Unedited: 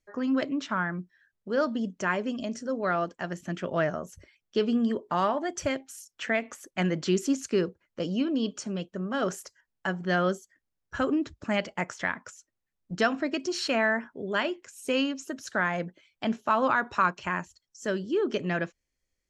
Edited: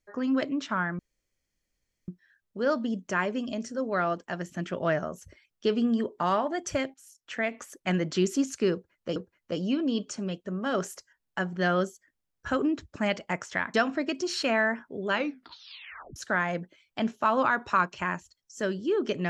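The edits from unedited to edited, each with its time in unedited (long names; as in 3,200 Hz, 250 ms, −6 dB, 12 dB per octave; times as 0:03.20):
0:00.99: splice in room tone 1.09 s
0:05.85–0:06.54: fade in, from −12.5 dB
0:07.64–0:08.07: repeat, 2 plays
0:12.22–0:12.99: remove
0:14.34: tape stop 1.07 s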